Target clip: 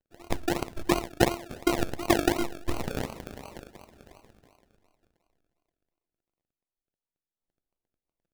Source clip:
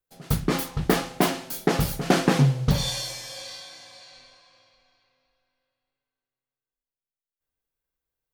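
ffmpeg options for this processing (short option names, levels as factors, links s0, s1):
-af "aecho=1:1:4.7:0.43,afftfilt=real='hypot(re,im)*cos(PI*b)':imag='0':win_size=512:overlap=0.75,acrusher=samples=35:mix=1:aa=0.000001:lfo=1:lforange=21:lforate=2.8"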